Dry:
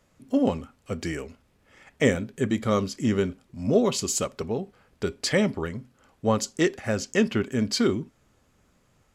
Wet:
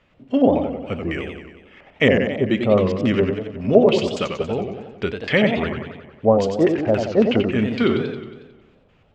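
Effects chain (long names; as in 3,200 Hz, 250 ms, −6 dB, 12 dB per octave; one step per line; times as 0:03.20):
auto-filter low-pass square 3.6 Hz 670–2,800 Hz
feedback echo with a swinging delay time 91 ms, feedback 60%, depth 166 cents, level −6 dB
level +3.5 dB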